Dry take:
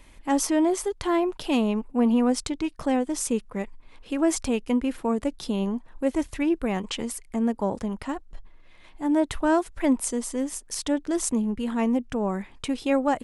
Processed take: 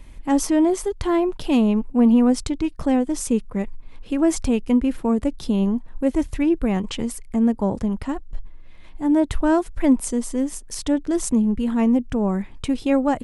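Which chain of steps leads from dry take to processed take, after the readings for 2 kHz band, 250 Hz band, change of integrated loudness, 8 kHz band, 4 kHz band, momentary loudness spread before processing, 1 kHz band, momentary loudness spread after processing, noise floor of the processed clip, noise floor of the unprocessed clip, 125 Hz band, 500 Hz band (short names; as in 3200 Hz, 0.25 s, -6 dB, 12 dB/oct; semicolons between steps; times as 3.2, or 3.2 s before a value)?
0.0 dB, +5.5 dB, +4.5 dB, 0.0 dB, 0.0 dB, 8 LU, +1.0 dB, 8 LU, -41 dBFS, -51 dBFS, +7.5 dB, +3.0 dB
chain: low shelf 260 Hz +11.5 dB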